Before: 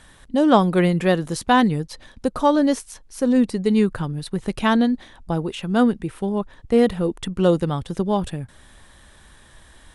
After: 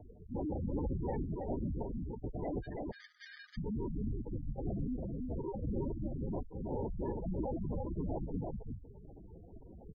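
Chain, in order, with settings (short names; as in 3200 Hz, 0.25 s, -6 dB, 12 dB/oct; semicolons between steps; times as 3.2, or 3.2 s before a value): reverb removal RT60 0.74 s; LPC vocoder at 8 kHz whisper; limiter -14 dBFS, peak gain reduction 11.5 dB; sample-and-hold 33×; tube stage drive 34 dB, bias 0.35; 2.59–3.57 rippled Chebyshev high-pass 1200 Hz, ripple 6 dB; on a send: echo 0.325 s -3 dB; on the sum: spectral gate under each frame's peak -10 dB strong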